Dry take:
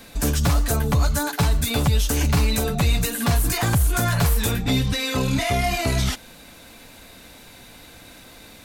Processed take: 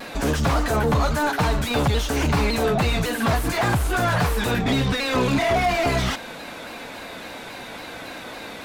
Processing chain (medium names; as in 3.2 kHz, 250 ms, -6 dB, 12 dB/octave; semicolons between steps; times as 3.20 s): overdrive pedal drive 24 dB, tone 1.1 kHz, clips at -11 dBFS; vibrato with a chosen wave saw down 3.6 Hz, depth 100 cents